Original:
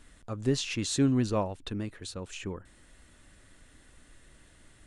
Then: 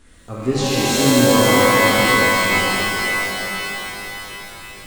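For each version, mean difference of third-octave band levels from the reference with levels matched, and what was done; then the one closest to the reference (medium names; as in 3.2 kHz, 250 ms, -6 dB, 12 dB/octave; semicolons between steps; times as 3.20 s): 15.5 dB: peaking EQ 360 Hz +3 dB; on a send: feedback echo behind a high-pass 78 ms, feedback 79%, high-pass 1.9 kHz, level -3.5 dB; on the sum: pitch-shifted reverb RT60 3.9 s, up +12 st, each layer -2 dB, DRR -7.5 dB; trim +2.5 dB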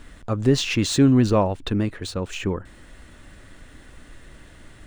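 2.0 dB: median filter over 3 samples; treble shelf 4.2 kHz -7 dB; in parallel at 0 dB: peak limiter -24.5 dBFS, peak gain reduction 9.5 dB; on the sum: trim +6 dB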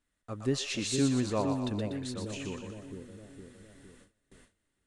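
7.0 dB: on a send: two-band feedback delay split 580 Hz, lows 461 ms, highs 121 ms, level -5 dB; on the sum: gate with hold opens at -42 dBFS; bass shelf 72 Hz -7.5 dB; trim -2 dB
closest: second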